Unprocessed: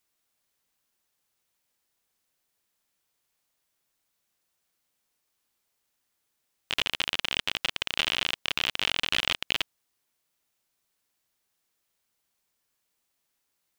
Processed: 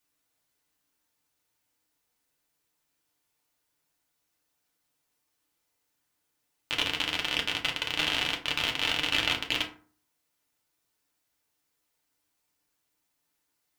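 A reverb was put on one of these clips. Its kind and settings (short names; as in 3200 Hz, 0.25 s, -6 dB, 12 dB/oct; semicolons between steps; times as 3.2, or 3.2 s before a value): FDN reverb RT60 0.43 s, low-frequency decay 1.25×, high-frequency decay 0.55×, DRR -0.5 dB; gain -2.5 dB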